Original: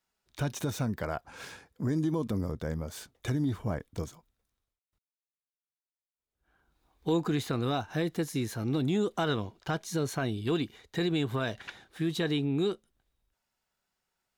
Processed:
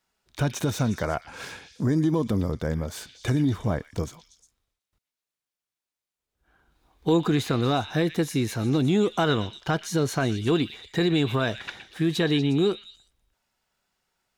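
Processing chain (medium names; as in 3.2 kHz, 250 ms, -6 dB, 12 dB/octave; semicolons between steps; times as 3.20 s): treble shelf 11 kHz -4.5 dB; repeats whose band climbs or falls 119 ms, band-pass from 2.8 kHz, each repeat 0.7 oct, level -7 dB; trim +6.5 dB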